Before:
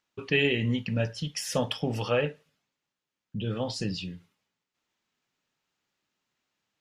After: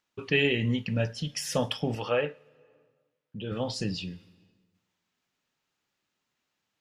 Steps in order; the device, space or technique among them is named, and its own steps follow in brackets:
0:01.95–0:03.52: bass and treble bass −8 dB, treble −9 dB
compressed reverb return (on a send at −13 dB: convolution reverb RT60 1.1 s, pre-delay 79 ms + downward compressor 12 to 1, threshold −41 dBFS, peak gain reduction 19 dB)

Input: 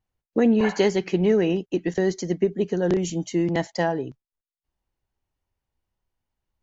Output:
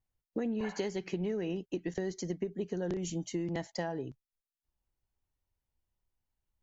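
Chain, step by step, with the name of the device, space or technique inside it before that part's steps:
ASMR close-microphone chain (low-shelf EQ 110 Hz +6 dB; downward compressor, threshold −23 dBFS, peak gain reduction 9 dB; high-shelf EQ 6,600 Hz +4.5 dB)
level −8 dB

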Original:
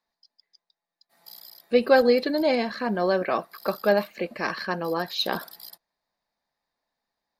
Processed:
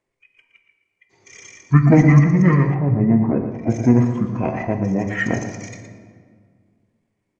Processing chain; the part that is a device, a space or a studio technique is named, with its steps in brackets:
monster voice (pitch shifter −9 semitones; formants moved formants −4 semitones; low-shelf EQ 180 Hz +7 dB; single-tap delay 117 ms −10 dB; convolution reverb RT60 1.9 s, pre-delay 6 ms, DRR 7 dB)
0:02.74–0:03.70: high-frequency loss of the air 390 metres
level +4 dB

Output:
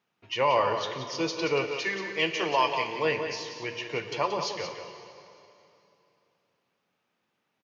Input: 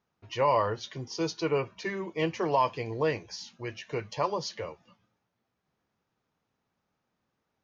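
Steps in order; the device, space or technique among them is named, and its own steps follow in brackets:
PA in a hall (high-pass filter 150 Hz 12 dB per octave; parametric band 2,700 Hz +8 dB 1.1 octaves; single-tap delay 179 ms −8.5 dB; convolution reverb RT60 2.9 s, pre-delay 18 ms, DRR 9 dB)
0:01.71–0:03.05: spectral tilt +2 dB per octave

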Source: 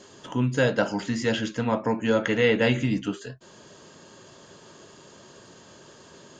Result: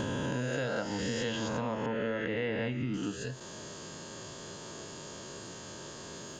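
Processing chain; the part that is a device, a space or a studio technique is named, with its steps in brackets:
peak hold with a rise ahead of every peak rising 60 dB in 1.77 s
0:01.86–0:02.94: low-pass filter 2,700 Hz 12 dB per octave
ASMR close-microphone chain (low-shelf EQ 140 Hz +5 dB; downward compressor 5 to 1, threshold −32 dBFS, peak gain reduction 16 dB; high-shelf EQ 6,300 Hz +7.5 dB)

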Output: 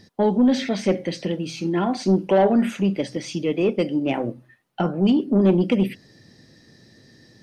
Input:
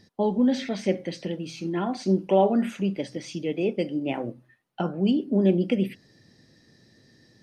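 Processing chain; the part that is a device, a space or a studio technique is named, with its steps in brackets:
saturation between pre-emphasis and de-emphasis (high-shelf EQ 2,800 Hz +8.5 dB; soft clipping −15.5 dBFS, distortion −16 dB; high-shelf EQ 2,800 Hz −8.5 dB)
level +6 dB

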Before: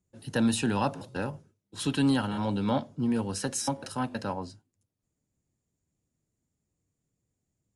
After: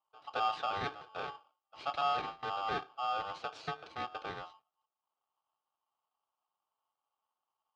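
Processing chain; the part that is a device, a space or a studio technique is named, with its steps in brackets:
0:02.01–0:02.43: noise gate with hold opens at −18 dBFS
ring modulator pedal into a guitar cabinet (ring modulator with a square carrier 990 Hz; loudspeaker in its box 99–3,700 Hz, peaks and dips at 210 Hz −8 dB, 1,900 Hz −10 dB, 2,900 Hz −4 dB)
level −6.5 dB

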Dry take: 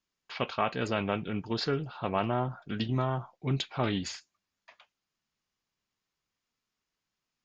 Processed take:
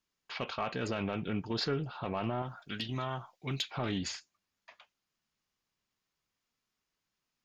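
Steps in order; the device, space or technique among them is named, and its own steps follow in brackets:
0:02.42–0:03.71: tilt shelving filter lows −7.5 dB, about 1,500 Hz
soft clipper into limiter (soft clipping −17 dBFS, distortion −20 dB; brickwall limiter −24 dBFS, peak gain reduction 6 dB)

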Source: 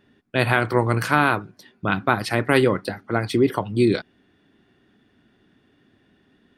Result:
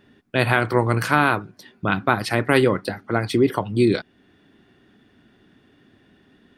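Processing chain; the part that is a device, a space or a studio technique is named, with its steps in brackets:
parallel compression (in parallel at −4 dB: downward compressor, threshold −36 dBFS, peak gain reduction 22 dB)

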